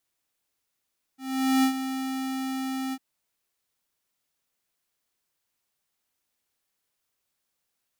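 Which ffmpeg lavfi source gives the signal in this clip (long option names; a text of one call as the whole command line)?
ffmpeg -f lavfi -i "aevalsrc='0.1*(2*lt(mod(264*t,1),0.5)-1)':duration=1.801:sample_rate=44100,afade=type=in:duration=0.453,afade=type=out:start_time=0.453:duration=0.092:silence=0.299,afade=type=out:start_time=1.75:duration=0.051" out.wav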